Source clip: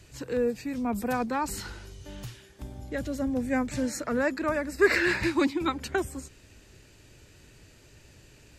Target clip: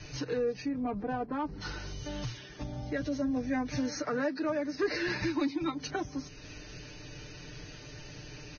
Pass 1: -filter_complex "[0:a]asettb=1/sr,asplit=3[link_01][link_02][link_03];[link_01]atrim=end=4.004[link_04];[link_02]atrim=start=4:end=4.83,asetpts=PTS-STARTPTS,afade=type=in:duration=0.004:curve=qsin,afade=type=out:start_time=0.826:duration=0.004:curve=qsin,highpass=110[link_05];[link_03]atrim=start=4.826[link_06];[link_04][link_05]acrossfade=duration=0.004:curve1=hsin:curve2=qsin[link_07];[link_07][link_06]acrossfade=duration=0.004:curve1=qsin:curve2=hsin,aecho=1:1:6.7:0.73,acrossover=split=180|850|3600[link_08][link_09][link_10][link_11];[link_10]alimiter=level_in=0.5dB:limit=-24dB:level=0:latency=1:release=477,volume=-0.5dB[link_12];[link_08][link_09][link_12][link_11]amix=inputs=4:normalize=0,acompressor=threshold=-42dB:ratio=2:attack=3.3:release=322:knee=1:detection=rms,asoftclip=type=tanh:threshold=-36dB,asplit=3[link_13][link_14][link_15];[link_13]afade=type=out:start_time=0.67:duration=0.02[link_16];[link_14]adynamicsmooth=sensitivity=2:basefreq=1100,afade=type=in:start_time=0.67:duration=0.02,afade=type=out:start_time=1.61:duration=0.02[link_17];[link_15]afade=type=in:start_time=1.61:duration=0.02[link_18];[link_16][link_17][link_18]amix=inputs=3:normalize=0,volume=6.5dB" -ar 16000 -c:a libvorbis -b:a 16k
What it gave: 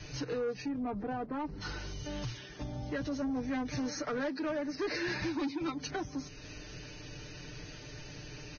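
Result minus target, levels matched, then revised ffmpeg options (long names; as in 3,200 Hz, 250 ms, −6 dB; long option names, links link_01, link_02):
soft clipping: distortion +15 dB
-filter_complex "[0:a]asettb=1/sr,asplit=3[link_01][link_02][link_03];[link_01]atrim=end=4.004[link_04];[link_02]atrim=start=4:end=4.83,asetpts=PTS-STARTPTS,afade=type=in:duration=0.004:curve=qsin,afade=type=out:start_time=0.826:duration=0.004:curve=qsin,highpass=110[link_05];[link_03]atrim=start=4.826[link_06];[link_04][link_05]acrossfade=duration=0.004:curve1=hsin:curve2=qsin[link_07];[link_07][link_06]acrossfade=duration=0.004:curve1=qsin:curve2=hsin,aecho=1:1:6.7:0.73,acrossover=split=180|850|3600[link_08][link_09][link_10][link_11];[link_10]alimiter=level_in=0.5dB:limit=-24dB:level=0:latency=1:release=477,volume=-0.5dB[link_12];[link_08][link_09][link_12][link_11]amix=inputs=4:normalize=0,acompressor=threshold=-42dB:ratio=2:attack=3.3:release=322:knee=1:detection=rms,asoftclip=type=tanh:threshold=-25.5dB,asplit=3[link_13][link_14][link_15];[link_13]afade=type=out:start_time=0.67:duration=0.02[link_16];[link_14]adynamicsmooth=sensitivity=2:basefreq=1100,afade=type=in:start_time=0.67:duration=0.02,afade=type=out:start_time=1.61:duration=0.02[link_17];[link_15]afade=type=in:start_time=1.61:duration=0.02[link_18];[link_16][link_17][link_18]amix=inputs=3:normalize=0,volume=6.5dB" -ar 16000 -c:a libvorbis -b:a 16k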